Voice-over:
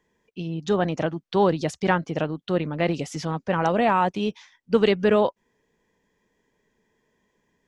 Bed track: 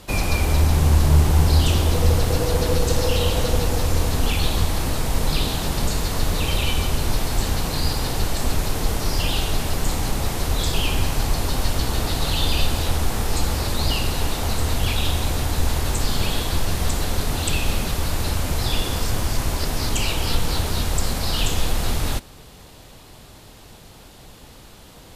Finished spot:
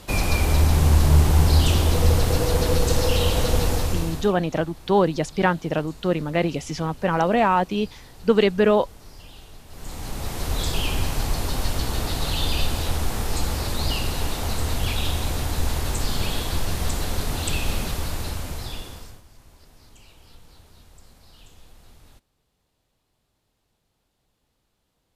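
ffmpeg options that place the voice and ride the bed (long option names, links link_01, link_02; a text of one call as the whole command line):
ffmpeg -i stem1.wav -i stem2.wav -filter_complex "[0:a]adelay=3550,volume=1.5dB[link_01];[1:a]volume=19dB,afade=type=out:start_time=3.69:duration=0.65:silence=0.0794328,afade=type=in:start_time=9.68:duration=0.89:silence=0.105925,afade=type=out:start_time=17.83:duration=1.39:silence=0.0530884[link_02];[link_01][link_02]amix=inputs=2:normalize=0" out.wav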